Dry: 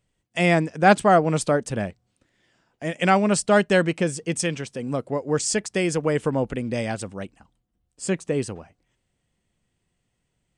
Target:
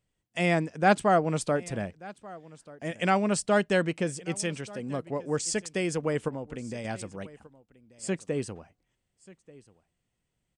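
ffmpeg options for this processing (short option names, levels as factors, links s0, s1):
-filter_complex "[0:a]asettb=1/sr,asplit=3[s0][s1][s2];[s0]atrim=end=6.284[s3];[s1]atrim=start=6.28:end=6.85,asetpts=PTS-STARTPTS,afade=t=in:d=0.004:c=qsin,afade=t=out:st=0.566:d=0.004:c=qsin,acompressor=threshold=0.0447:ratio=6[s4];[s2]atrim=start=6.846[s5];[s3][s4]acrossfade=d=0.004:c1=hsin:c2=qsin[s6];[s6][s5]acrossfade=d=0.004:c1=qsin:c2=hsin,asplit=2[s7][s8];[s8]aecho=0:1:1186:0.0891[s9];[s7][s9]amix=inputs=2:normalize=0,volume=0.501"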